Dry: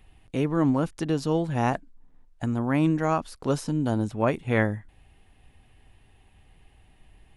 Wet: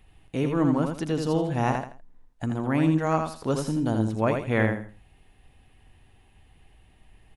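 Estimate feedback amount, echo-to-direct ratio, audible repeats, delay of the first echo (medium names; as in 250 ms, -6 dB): 26%, -4.5 dB, 3, 82 ms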